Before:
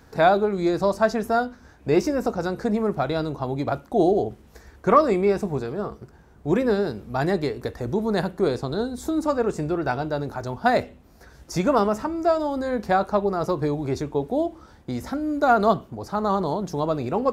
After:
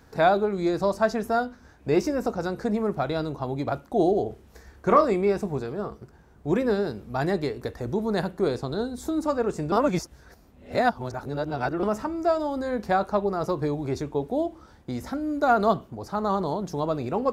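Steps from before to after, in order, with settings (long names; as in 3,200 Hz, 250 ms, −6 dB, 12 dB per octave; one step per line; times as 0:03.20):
0:04.23–0:05.05: flutter between parallel walls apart 5.2 metres, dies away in 0.2 s
0:09.72–0:11.83: reverse
level −2.5 dB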